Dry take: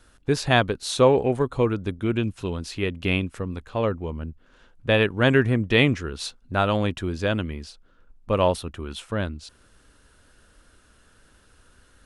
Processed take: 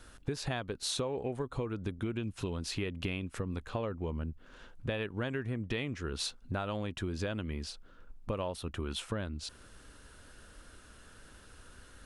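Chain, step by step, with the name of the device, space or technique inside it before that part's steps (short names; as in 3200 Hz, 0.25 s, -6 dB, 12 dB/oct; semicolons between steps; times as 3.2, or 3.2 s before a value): serial compression, peaks first (compressor, threshold -28 dBFS, peak gain reduction 15.5 dB; compressor 2:1, threshold -38 dBFS, peak gain reduction 7.5 dB); gain +2 dB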